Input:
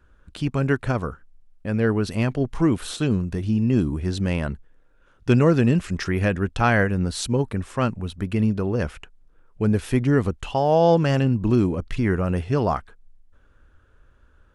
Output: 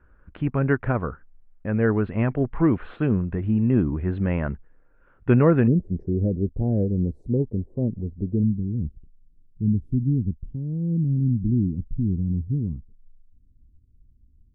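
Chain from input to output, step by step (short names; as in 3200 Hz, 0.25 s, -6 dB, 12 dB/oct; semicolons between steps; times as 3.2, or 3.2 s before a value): inverse Chebyshev low-pass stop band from 5400 Hz, stop band 50 dB, from 5.66 s stop band from 1200 Hz, from 8.42 s stop band from 660 Hz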